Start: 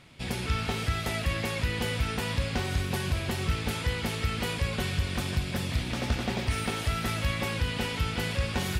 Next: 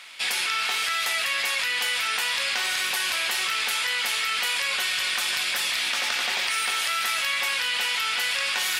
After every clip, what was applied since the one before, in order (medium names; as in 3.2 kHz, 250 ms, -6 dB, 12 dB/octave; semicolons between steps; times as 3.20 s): high-pass 1.4 kHz 12 dB/octave; in parallel at +1 dB: compressor with a negative ratio -41 dBFS, ratio -1; on the sum: trim +6.5 dB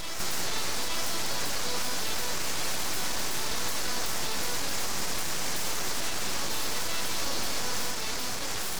peak limiter -20 dBFS, peak gain reduction 9.5 dB; full-wave rectifier; on a send: reverse echo 871 ms -4 dB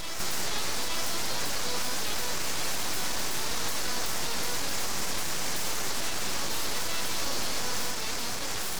warped record 78 rpm, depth 100 cents